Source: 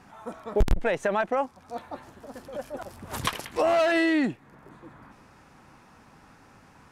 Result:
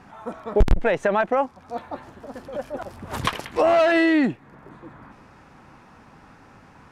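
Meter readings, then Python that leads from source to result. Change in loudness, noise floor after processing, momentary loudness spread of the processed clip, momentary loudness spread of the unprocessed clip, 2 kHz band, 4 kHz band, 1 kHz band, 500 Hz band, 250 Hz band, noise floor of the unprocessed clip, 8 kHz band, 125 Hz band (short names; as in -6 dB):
+4.5 dB, -51 dBFS, 20 LU, 20 LU, +4.0 dB, +2.0 dB, +4.5 dB, +5.0 dB, +5.0 dB, -56 dBFS, -2.0 dB, +5.0 dB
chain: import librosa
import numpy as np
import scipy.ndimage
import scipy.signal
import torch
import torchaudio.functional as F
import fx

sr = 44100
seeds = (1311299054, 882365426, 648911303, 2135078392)

y = fx.high_shelf(x, sr, hz=5600.0, db=-10.5)
y = y * librosa.db_to_amplitude(5.0)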